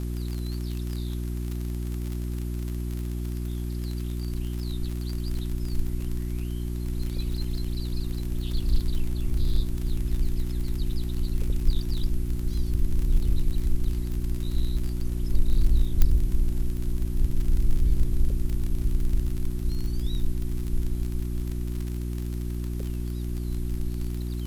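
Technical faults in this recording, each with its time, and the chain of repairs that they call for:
surface crackle 41 per second −29 dBFS
mains hum 60 Hz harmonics 6 −30 dBFS
0:16.02: click −8 dBFS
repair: click removal
hum removal 60 Hz, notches 6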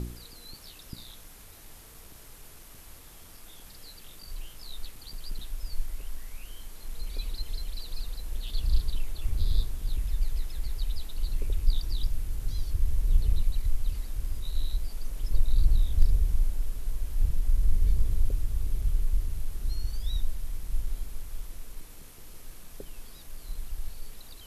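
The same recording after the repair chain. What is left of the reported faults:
0:16.02: click

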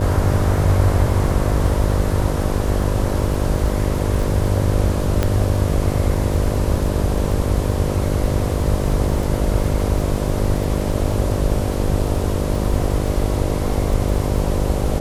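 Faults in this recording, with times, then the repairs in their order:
mains buzz 50 Hz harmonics 12 −23 dBFS
surface crackle 30 per second −26 dBFS
0:05.23: click −5 dBFS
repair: click removal
hum removal 50 Hz, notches 12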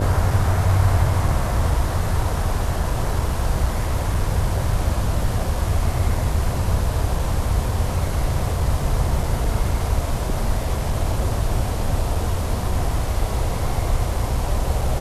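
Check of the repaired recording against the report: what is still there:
0:05.23: click

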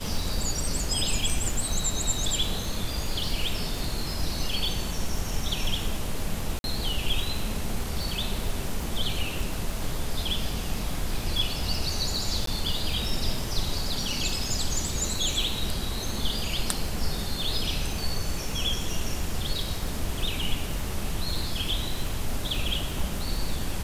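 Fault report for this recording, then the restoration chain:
surface crackle 60 per second −31 dBFS
0:06.59–0:06.64: drop-out 51 ms
0:12.46–0:12.47: drop-out 13 ms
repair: click removal
repair the gap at 0:06.59, 51 ms
repair the gap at 0:12.46, 13 ms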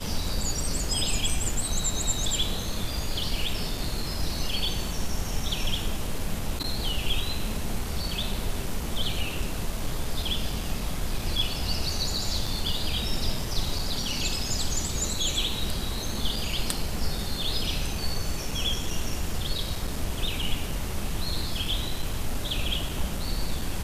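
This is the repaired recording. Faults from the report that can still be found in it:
none of them is left

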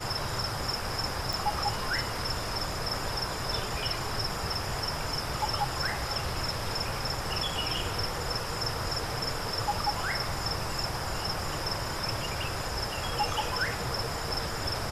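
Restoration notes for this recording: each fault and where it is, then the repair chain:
0:01.33: click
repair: click removal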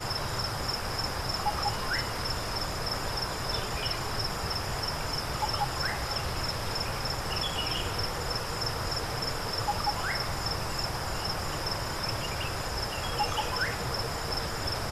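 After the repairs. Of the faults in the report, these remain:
none of them is left

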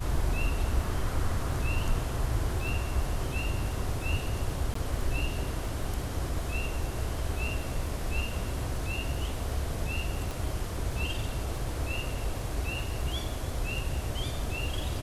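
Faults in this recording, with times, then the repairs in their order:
surface crackle 20 per second −37 dBFS
0:04.74–0:04.75: drop-out 14 ms
0:10.31: click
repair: click removal
repair the gap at 0:04.74, 14 ms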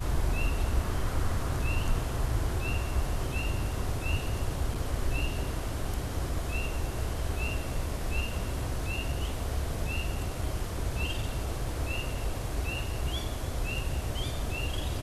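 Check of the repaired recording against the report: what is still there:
0:10.31: click

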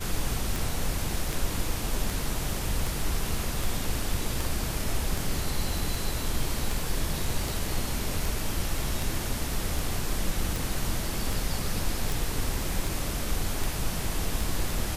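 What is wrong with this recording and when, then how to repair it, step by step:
scratch tick 78 rpm
0:12.12: click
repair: click removal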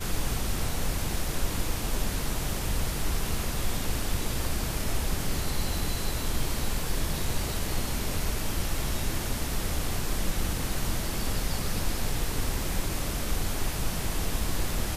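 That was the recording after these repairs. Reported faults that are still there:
none of them is left

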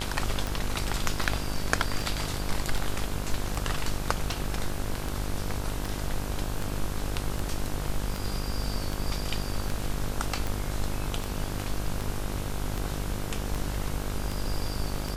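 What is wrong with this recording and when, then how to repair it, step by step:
mains buzz 50 Hz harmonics 33 −34 dBFS
scratch tick 78 rpm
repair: click removal
hum removal 50 Hz, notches 33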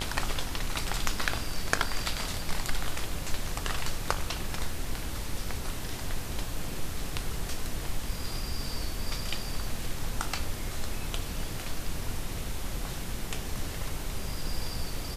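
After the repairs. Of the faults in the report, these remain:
none of them is left

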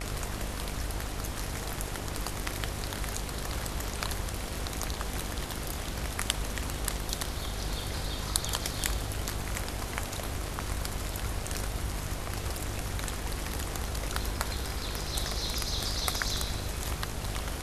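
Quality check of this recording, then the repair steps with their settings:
mains buzz 50 Hz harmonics 31 −39 dBFS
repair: hum removal 50 Hz, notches 31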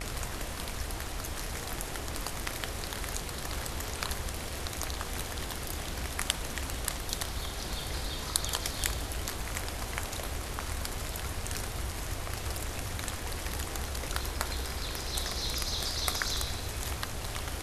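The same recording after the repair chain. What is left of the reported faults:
none of them is left

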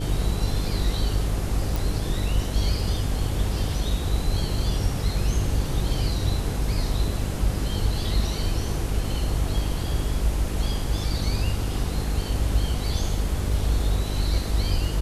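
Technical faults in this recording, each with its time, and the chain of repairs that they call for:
mains buzz 50 Hz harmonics 10 −28 dBFS
0:01.76: click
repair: click removal
hum removal 50 Hz, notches 10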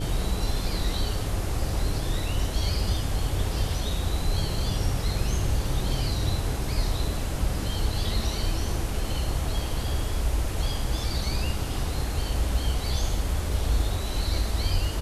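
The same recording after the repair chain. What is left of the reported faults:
none of them is left

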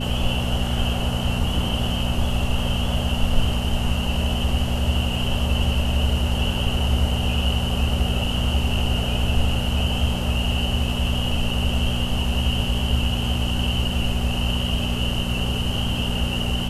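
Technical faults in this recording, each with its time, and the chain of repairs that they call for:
mains hum 60 Hz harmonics 4 −26 dBFS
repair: hum removal 60 Hz, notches 4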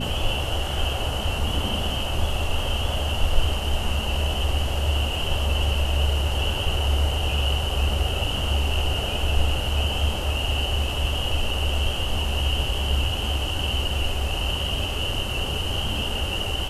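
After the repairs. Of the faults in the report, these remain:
none of them is left

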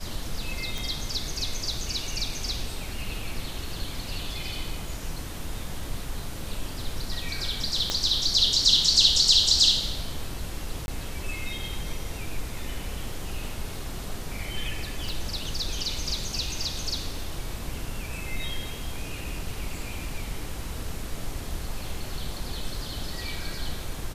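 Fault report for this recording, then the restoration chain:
0:00.78: click
0:07.90: click −11 dBFS
0:10.86–0:10.88: drop-out 21 ms
0:15.09: click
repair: click removal
repair the gap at 0:10.86, 21 ms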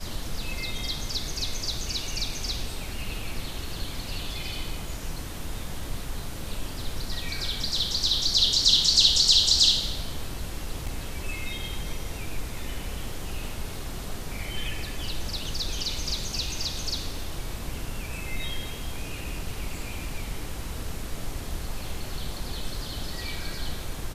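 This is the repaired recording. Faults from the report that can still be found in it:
0:07.90: click
0:15.09: click

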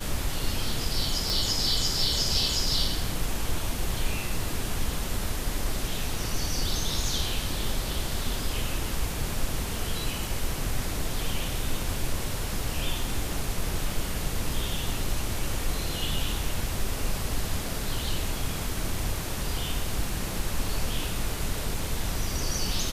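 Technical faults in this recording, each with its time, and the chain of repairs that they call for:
0:01.30: click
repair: click removal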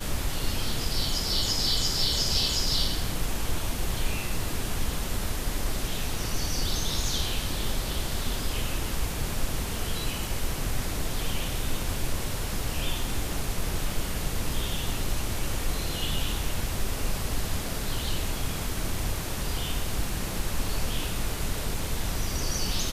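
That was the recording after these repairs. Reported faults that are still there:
0:01.30: click

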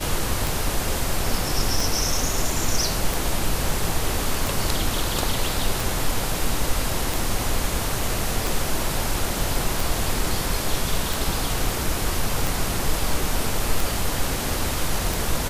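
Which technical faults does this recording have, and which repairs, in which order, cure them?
scratch tick 45 rpm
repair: click removal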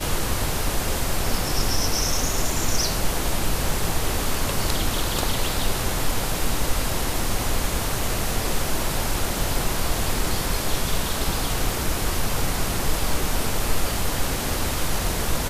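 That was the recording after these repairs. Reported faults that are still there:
none of them is left

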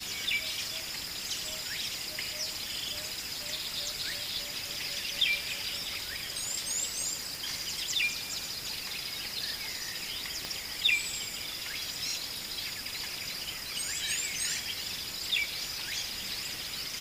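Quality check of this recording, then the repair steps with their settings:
0:07.35: click
0:10.45: click −20 dBFS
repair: click removal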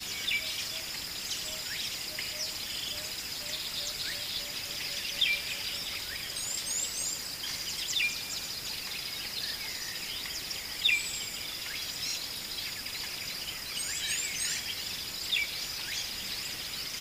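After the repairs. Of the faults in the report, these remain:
0:10.45: click

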